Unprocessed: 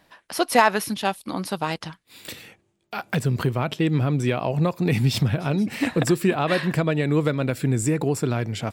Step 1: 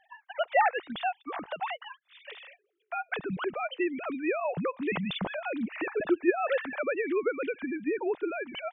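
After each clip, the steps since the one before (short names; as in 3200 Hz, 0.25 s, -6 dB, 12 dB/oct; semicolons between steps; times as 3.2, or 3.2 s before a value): sine-wave speech; bell 240 Hz -10.5 dB 0.85 oct; in parallel at +2 dB: compressor, threshold -32 dBFS, peak gain reduction 19 dB; on the sum: gain -8 dB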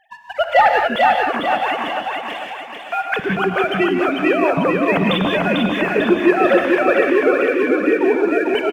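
sample leveller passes 1; on a send: feedback echo 0.445 s, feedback 46%, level -3.5 dB; on the sum: non-linear reverb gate 0.21 s rising, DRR 3 dB; gain +8 dB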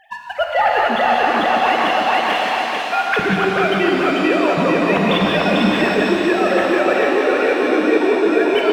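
reverse; compressor 5:1, threshold -23 dBFS, peak gain reduction 13.5 dB; reverse; shimmer reverb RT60 3.2 s, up +7 st, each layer -8 dB, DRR 2.5 dB; gain +7.5 dB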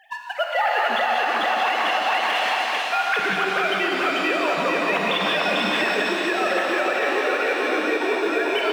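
HPF 950 Hz 6 dB/oct; limiter -12 dBFS, peak gain reduction 5.5 dB; companded quantiser 8-bit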